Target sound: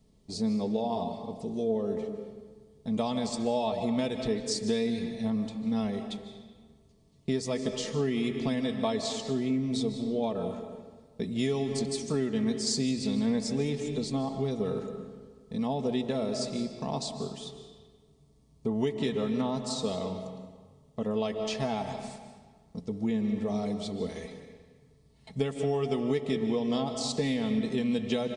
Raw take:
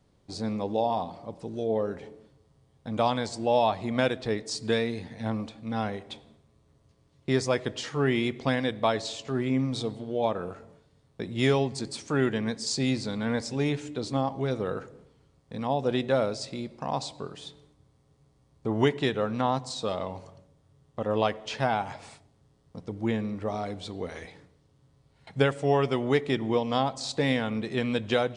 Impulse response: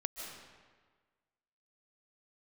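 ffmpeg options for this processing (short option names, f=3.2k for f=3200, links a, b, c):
-filter_complex "[0:a]equalizer=f=1.3k:t=o:w=2.7:g=-10,bandreject=f=1.5k:w=7.2,asplit=2[a][b];[1:a]atrim=start_sample=2205[c];[b][c]afir=irnorm=-1:irlink=0,volume=-1dB[d];[a][d]amix=inputs=2:normalize=0,acompressor=threshold=-24dB:ratio=6,aecho=1:1:4.6:0.57,volume=-2dB"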